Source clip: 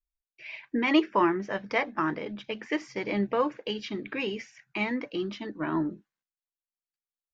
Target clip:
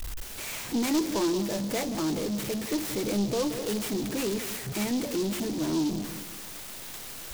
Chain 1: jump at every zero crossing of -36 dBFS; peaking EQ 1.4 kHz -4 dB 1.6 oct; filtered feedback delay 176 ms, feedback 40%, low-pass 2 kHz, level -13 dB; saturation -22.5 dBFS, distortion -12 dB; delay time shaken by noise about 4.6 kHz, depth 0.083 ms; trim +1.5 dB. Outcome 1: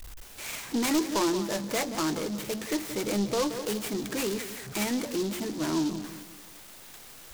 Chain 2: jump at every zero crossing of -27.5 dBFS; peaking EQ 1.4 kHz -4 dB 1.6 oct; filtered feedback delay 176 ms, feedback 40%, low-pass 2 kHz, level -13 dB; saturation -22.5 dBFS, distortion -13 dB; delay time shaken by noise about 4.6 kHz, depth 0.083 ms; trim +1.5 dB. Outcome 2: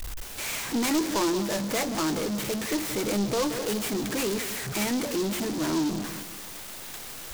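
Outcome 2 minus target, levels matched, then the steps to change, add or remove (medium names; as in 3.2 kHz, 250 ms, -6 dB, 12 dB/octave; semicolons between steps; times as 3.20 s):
1 kHz band +3.0 dB
change: peaking EQ 1.4 kHz -14 dB 1.6 oct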